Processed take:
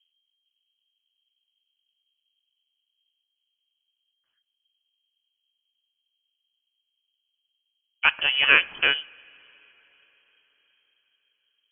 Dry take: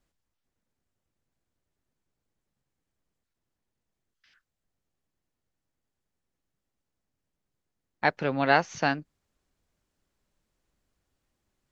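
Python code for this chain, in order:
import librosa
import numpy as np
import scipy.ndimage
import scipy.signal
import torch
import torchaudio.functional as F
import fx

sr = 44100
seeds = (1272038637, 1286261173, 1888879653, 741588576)

y = fx.env_lowpass(x, sr, base_hz=480.0, full_db=-24.0)
y = fx.rev_double_slope(y, sr, seeds[0], early_s=0.4, late_s=4.6, knee_db=-19, drr_db=17.5)
y = fx.freq_invert(y, sr, carrier_hz=3200)
y = F.gain(torch.from_numpy(y), 4.0).numpy()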